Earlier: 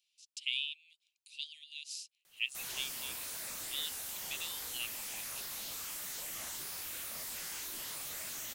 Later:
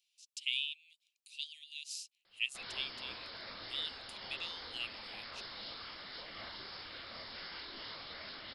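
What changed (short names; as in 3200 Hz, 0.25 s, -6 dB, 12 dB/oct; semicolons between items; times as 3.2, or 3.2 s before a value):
background: add brick-wall FIR low-pass 5400 Hz; reverb: on, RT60 0.85 s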